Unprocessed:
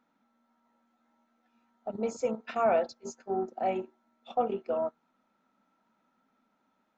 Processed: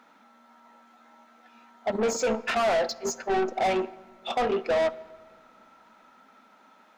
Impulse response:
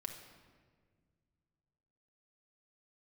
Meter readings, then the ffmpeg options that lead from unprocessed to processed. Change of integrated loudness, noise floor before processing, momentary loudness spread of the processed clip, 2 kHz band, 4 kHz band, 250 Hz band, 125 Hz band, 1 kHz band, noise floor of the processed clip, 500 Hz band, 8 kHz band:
+4.5 dB, -75 dBFS, 9 LU, +12.5 dB, +16.5 dB, +4.5 dB, +5.0 dB, +4.5 dB, -58 dBFS, +4.5 dB, no reading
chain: -filter_complex "[0:a]alimiter=limit=0.0891:level=0:latency=1:release=196,asplit=2[s0][s1];[s1]highpass=f=720:p=1,volume=14.1,asoftclip=type=tanh:threshold=0.0891[s2];[s0][s2]amix=inputs=2:normalize=0,lowpass=f=5700:p=1,volume=0.501,asplit=2[s3][s4];[1:a]atrim=start_sample=2205[s5];[s4][s5]afir=irnorm=-1:irlink=0,volume=0.355[s6];[s3][s6]amix=inputs=2:normalize=0,volume=1.12"

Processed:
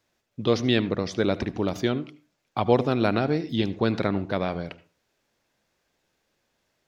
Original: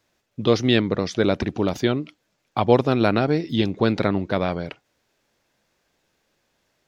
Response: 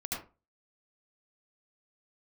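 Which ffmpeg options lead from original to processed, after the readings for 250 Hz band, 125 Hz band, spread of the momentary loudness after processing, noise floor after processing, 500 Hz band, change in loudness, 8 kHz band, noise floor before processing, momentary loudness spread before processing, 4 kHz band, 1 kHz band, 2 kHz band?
-3.5 dB, -3.5 dB, 11 LU, -75 dBFS, -4.0 dB, -3.5 dB, no reading, -72 dBFS, 11 LU, -4.0 dB, -3.5 dB, -4.0 dB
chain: -filter_complex "[0:a]asplit=2[s0][s1];[1:a]atrim=start_sample=2205[s2];[s1][s2]afir=irnorm=-1:irlink=0,volume=0.126[s3];[s0][s3]amix=inputs=2:normalize=0,volume=0.596"

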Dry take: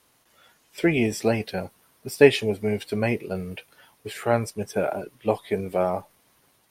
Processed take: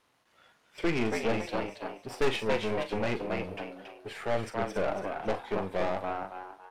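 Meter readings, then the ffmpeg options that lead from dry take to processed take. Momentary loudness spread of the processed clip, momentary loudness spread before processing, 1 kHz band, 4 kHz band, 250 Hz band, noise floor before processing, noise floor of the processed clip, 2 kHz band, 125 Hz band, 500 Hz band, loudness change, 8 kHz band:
12 LU, 19 LU, -2.5 dB, -5.0 dB, -7.5 dB, -64 dBFS, -69 dBFS, -5.5 dB, -9.0 dB, -7.5 dB, -8.0 dB, -10.0 dB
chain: -filter_complex "[0:a]aeval=exprs='if(lt(val(0),0),0.251*val(0),val(0))':c=same,highpass=f=940:p=1,aemphasis=mode=reproduction:type=riaa,asplit=2[s0][s1];[s1]asplit=4[s2][s3][s4][s5];[s2]adelay=279,afreqshift=94,volume=0.422[s6];[s3]adelay=558,afreqshift=188,volume=0.143[s7];[s4]adelay=837,afreqshift=282,volume=0.049[s8];[s5]adelay=1116,afreqshift=376,volume=0.0166[s9];[s6][s7][s8][s9]amix=inputs=4:normalize=0[s10];[s0][s10]amix=inputs=2:normalize=0,aeval=exprs='(tanh(25.1*val(0)+0.55)-tanh(0.55))/25.1':c=same,asplit=2[s11][s12];[s12]adelay=41,volume=0.299[s13];[s11][s13]amix=inputs=2:normalize=0,volume=1.88"

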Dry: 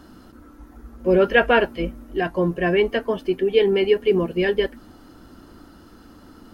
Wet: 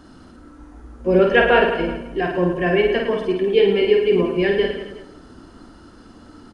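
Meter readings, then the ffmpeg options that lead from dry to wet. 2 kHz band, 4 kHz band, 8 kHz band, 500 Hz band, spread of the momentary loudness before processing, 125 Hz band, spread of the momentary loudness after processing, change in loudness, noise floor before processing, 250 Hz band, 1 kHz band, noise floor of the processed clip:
+2.0 dB, +2.0 dB, no reading, +2.5 dB, 10 LU, +2.0 dB, 10 LU, +2.5 dB, -48 dBFS, +2.0 dB, +2.5 dB, -46 dBFS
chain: -filter_complex "[0:a]asplit=2[s0][s1];[s1]aecho=0:1:50|110|182|268.4|372.1:0.631|0.398|0.251|0.158|0.1[s2];[s0][s2]amix=inputs=2:normalize=0,aresample=22050,aresample=44100,asplit=2[s3][s4];[s4]adelay=169,lowpass=f=2000:p=1,volume=0.2,asplit=2[s5][s6];[s6]adelay=169,lowpass=f=2000:p=1,volume=0.4,asplit=2[s7][s8];[s8]adelay=169,lowpass=f=2000:p=1,volume=0.4,asplit=2[s9][s10];[s10]adelay=169,lowpass=f=2000:p=1,volume=0.4[s11];[s5][s7][s9][s11]amix=inputs=4:normalize=0[s12];[s3][s12]amix=inputs=2:normalize=0"

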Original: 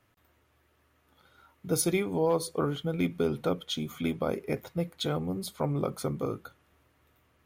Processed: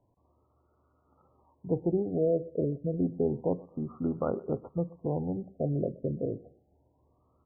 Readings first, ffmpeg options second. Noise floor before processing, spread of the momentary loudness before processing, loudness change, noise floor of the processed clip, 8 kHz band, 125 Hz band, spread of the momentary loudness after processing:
-69 dBFS, 7 LU, -1.0 dB, -71 dBFS, under -40 dB, 0.0 dB, 7 LU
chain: -af "asuperstop=centerf=2200:order=4:qfactor=1.1,aecho=1:1:124|248:0.0794|0.027,afftfilt=real='re*lt(b*sr/1024,680*pow(1500/680,0.5+0.5*sin(2*PI*0.29*pts/sr)))':imag='im*lt(b*sr/1024,680*pow(1500/680,0.5+0.5*sin(2*PI*0.29*pts/sr)))':win_size=1024:overlap=0.75"

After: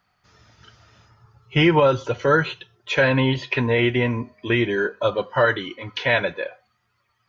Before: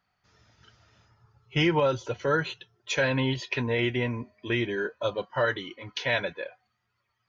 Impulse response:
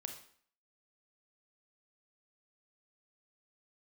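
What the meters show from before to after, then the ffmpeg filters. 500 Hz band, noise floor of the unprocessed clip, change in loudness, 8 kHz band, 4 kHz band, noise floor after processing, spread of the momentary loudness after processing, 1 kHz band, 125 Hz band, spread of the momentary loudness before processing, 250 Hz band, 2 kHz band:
+7.5 dB, -78 dBFS, +7.0 dB, no reading, +5.0 dB, -70 dBFS, 11 LU, +8.0 dB, +7.5 dB, 12 LU, +7.5 dB, +7.0 dB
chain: -filter_complex "[0:a]acrossover=split=3800[s0][s1];[s1]acompressor=threshold=0.00224:ratio=4:attack=1:release=60[s2];[s0][s2]amix=inputs=2:normalize=0,asplit=2[s3][s4];[s4]equalizer=f=1200:w=4.3:g=11[s5];[1:a]atrim=start_sample=2205,atrim=end_sample=6174[s6];[s5][s6]afir=irnorm=-1:irlink=0,volume=0.266[s7];[s3][s7]amix=inputs=2:normalize=0,volume=2"

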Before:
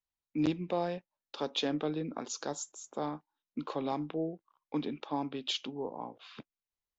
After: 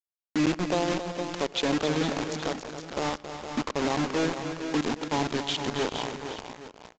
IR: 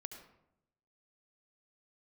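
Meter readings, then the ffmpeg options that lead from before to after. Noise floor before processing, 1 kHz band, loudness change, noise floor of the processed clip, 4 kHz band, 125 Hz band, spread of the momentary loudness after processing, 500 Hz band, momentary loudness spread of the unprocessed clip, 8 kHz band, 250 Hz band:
under -85 dBFS, +8.0 dB, +7.0 dB, under -85 dBFS, +7.0 dB, +8.0 dB, 10 LU, +7.0 dB, 13 LU, no reading, +7.0 dB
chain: -filter_complex "[0:a]aeval=exprs='val(0)+0.5*0.00447*sgn(val(0))':c=same,highshelf=f=4200:g=-7.5,asplit=2[s0][s1];[s1]alimiter=level_in=1.78:limit=0.0631:level=0:latency=1:release=192,volume=0.562,volume=1.06[s2];[s0][s2]amix=inputs=2:normalize=0,acrusher=bits=4:mix=0:aa=0.000001,aecho=1:1:272|372|462|490|820:0.316|0.112|0.355|0.133|0.158,asplit=2[s3][s4];[1:a]atrim=start_sample=2205[s5];[s4][s5]afir=irnorm=-1:irlink=0,volume=0.316[s6];[s3][s6]amix=inputs=2:normalize=0,aresample=16000,aresample=44100,acontrast=22,volume=0.562"

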